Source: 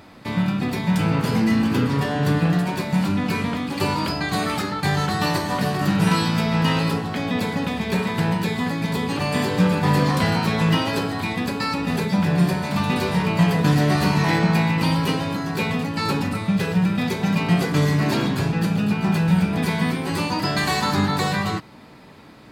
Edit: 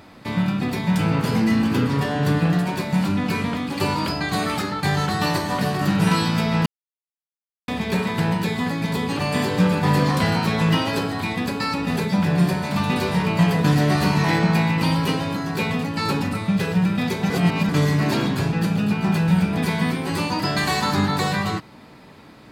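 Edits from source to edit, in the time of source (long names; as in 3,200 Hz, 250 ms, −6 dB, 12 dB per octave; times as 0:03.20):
0:06.66–0:07.68: silence
0:17.30–0:17.69: reverse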